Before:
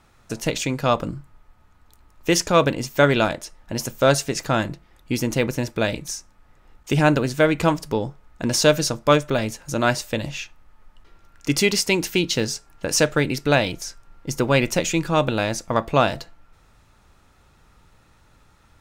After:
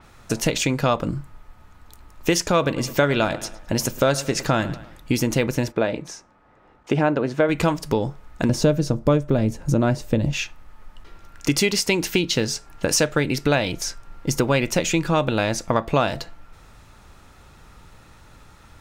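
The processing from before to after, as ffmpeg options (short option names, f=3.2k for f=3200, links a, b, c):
-filter_complex "[0:a]asettb=1/sr,asplit=3[a][b][c];[a]atrim=end=2.524[d];[b]atrim=start=2.52:end=5.12,asetpts=PTS-STARTPTS,afade=t=in:d=0.004:c=qsin,afade=t=out:st=2.596:d=0.004:c=qsin,asplit=2[e][f];[f]adelay=107,lowpass=f=4.6k:p=1,volume=-19dB,asplit=2[g][h];[h]adelay=107,lowpass=f=4.6k:p=1,volume=0.38,asplit=2[i][j];[j]adelay=107,lowpass=f=4.6k:p=1,volume=0.38[k];[e][g][i][k]amix=inputs=4:normalize=0,atrim=end_sample=114660[l];[c]atrim=start=5.116[m];[d][l]acrossfade=d=0.004:c1=hsin:c2=qsin[n];[n][m]acrossfade=d=0.004:c1=qsin:c2=hsin,asplit=3[o][p][q];[o]afade=t=out:st=5.71:d=0.02[r];[p]bandpass=f=570:t=q:w=0.5,afade=t=in:st=5.71:d=0.02,afade=t=out:st=7.48:d=0.02[s];[q]afade=t=in:st=7.48:d=0.02[t];[r][s][t]amix=inputs=3:normalize=0,asettb=1/sr,asplit=3[u][v][w];[u]atrim=end=8.494[x];[v]atrim=start=8.49:end=10.33,asetpts=PTS-STARTPTS,afade=t=in:d=0.004:c=qsin,afade=t=out:st=1.836:d=0.004:c=qsin,tiltshelf=f=720:g=9[y];[w]atrim=start=10.326[z];[x][y]acrossfade=d=0.004:c1=hsin:c2=qsin[aa];[aa][z]acrossfade=d=0.004:c1=qsin:c2=hsin,acompressor=threshold=-26dB:ratio=3,adynamicequalizer=threshold=0.00631:dfrequency=5100:dqfactor=0.7:tfrequency=5100:tqfactor=0.7:attack=5:release=100:ratio=0.375:range=2:mode=cutabove:tftype=highshelf,volume=7.5dB"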